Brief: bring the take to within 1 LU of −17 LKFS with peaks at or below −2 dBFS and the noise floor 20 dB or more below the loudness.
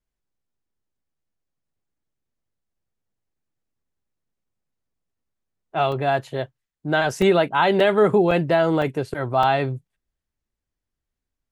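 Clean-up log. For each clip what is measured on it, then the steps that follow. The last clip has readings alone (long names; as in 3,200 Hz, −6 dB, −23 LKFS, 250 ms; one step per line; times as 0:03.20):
number of dropouts 6; longest dropout 3.1 ms; integrated loudness −20.0 LKFS; sample peak −6.0 dBFS; target loudness −17.0 LKFS
→ repair the gap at 0:05.92/0:07.22/0:07.80/0:08.31/0:08.82/0:09.43, 3.1 ms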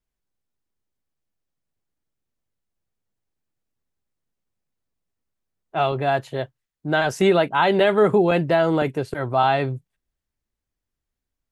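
number of dropouts 0; integrated loudness −20.0 LKFS; sample peak −6.0 dBFS; target loudness −17.0 LKFS
→ level +3 dB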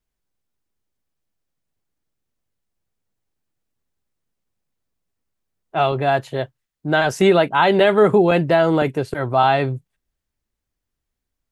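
integrated loudness −17.0 LKFS; sample peak −3.0 dBFS; background noise floor −81 dBFS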